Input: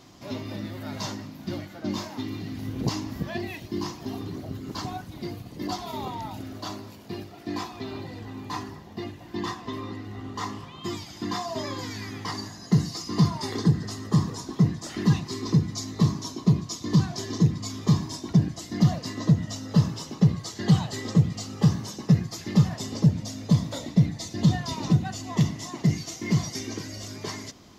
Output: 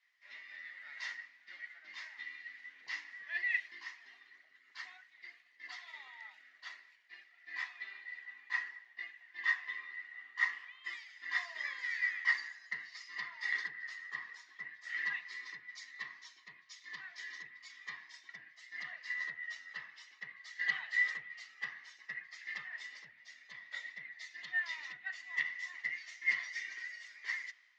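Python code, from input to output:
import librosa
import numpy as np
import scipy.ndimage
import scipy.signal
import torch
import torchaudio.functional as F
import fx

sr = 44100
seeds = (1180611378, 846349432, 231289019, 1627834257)

y = fx.env_lowpass_down(x, sr, base_hz=2700.0, full_db=-16.0)
y = fx.ladder_bandpass(y, sr, hz=2000.0, resonance_pct=85)
y = fx.band_widen(y, sr, depth_pct=70)
y = y * 10.0 ** (3.5 / 20.0)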